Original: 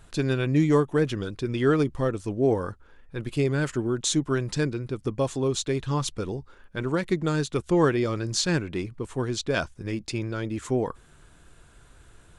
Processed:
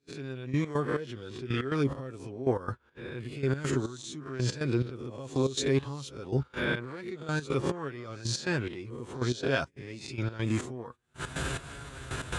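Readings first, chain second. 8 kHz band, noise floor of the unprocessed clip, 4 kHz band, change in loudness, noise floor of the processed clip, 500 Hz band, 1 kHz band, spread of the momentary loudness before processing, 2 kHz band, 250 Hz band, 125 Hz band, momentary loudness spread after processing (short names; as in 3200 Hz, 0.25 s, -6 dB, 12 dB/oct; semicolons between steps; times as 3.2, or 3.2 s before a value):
-7.5 dB, -55 dBFS, -5.0 dB, -6.5 dB, -60 dBFS, -7.0 dB, -5.5 dB, 11 LU, -2.0 dB, -7.0 dB, -4.5 dB, 12 LU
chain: spectral swells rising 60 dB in 0.49 s; recorder AGC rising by 68 dB/s; HPF 50 Hz 24 dB/oct; high shelf 2100 Hz +7.5 dB; gate -28 dBFS, range -21 dB; flange 0.51 Hz, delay 7.1 ms, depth 1.4 ms, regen +43%; step gate ".....x.xx" 140 bpm -12 dB; LPF 2700 Hz 6 dB/oct; gain -2 dB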